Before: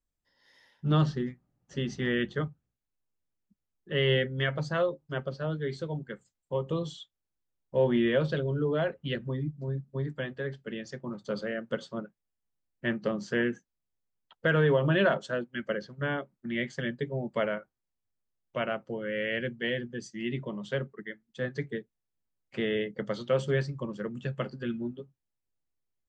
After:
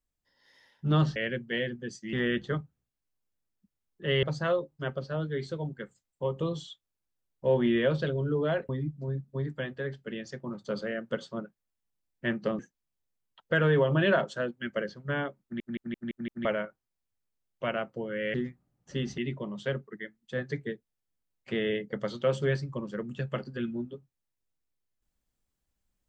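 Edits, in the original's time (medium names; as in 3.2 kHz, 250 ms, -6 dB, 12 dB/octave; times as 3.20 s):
1.16–2.00 s: swap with 19.27–20.24 s
4.10–4.53 s: delete
8.99–9.29 s: delete
13.19–13.52 s: delete
16.36 s: stutter in place 0.17 s, 6 plays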